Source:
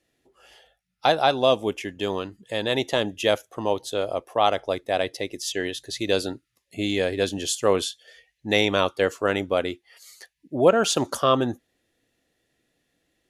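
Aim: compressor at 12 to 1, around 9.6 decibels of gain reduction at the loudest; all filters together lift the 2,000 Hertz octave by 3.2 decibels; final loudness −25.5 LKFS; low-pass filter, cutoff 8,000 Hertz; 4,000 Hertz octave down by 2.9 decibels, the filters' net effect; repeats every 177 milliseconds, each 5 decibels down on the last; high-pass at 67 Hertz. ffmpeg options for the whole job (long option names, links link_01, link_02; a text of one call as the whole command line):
ffmpeg -i in.wav -af "highpass=67,lowpass=8000,equalizer=frequency=2000:width_type=o:gain=5.5,equalizer=frequency=4000:width_type=o:gain=-5.5,acompressor=threshold=-21dB:ratio=12,aecho=1:1:177|354|531|708|885|1062|1239:0.562|0.315|0.176|0.0988|0.0553|0.031|0.0173,volume=2dB" out.wav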